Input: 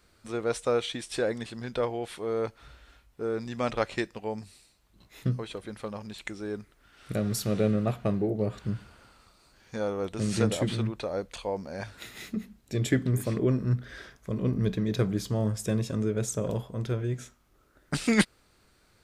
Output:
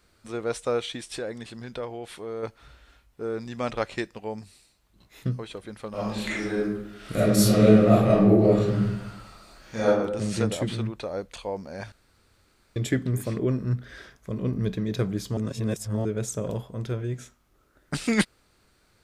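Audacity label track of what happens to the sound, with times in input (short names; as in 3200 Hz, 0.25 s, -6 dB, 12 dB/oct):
1.160000	2.430000	compressor 1.5:1, threshold -37 dBFS
5.890000	9.880000	reverb throw, RT60 0.86 s, DRR -10 dB
11.920000	12.760000	room tone
15.370000	16.050000	reverse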